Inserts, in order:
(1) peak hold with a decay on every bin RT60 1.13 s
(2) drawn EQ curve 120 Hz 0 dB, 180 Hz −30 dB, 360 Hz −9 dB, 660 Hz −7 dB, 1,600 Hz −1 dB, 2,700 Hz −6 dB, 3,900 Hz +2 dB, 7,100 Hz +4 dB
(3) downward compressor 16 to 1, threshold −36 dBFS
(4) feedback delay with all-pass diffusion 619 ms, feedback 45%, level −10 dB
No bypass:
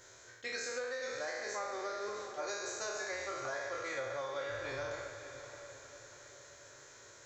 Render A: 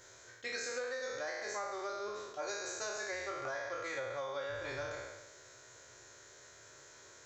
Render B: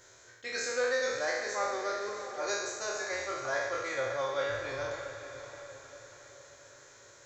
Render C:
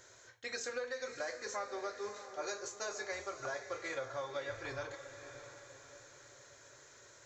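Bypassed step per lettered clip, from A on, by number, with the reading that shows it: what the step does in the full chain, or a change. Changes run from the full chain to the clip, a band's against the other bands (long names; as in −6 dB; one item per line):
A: 4, echo-to-direct ratio −9.0 dB to none audible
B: 3, average gain reduction 3.0 dB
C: 1, change in integrated loudness −2.0 LU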